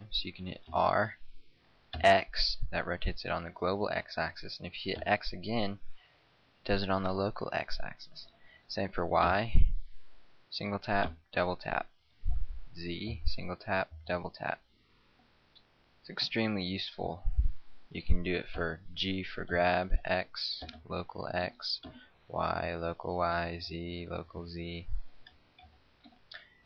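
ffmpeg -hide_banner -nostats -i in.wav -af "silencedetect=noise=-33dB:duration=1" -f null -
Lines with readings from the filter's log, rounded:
silence_start: 14.54
silence_end: 16.10 | silence_duration: 1.56
silence_start: 25.01
silence_end: 26.32 | silence_duration: 1.31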